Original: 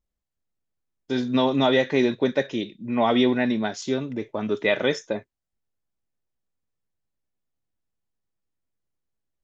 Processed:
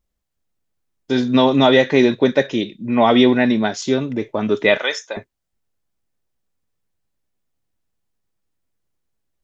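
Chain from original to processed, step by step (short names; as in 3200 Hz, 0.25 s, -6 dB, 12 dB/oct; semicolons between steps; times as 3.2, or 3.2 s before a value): 4.77–5.17 HPF 840 Hz 12 dB/oct; gain +7 dB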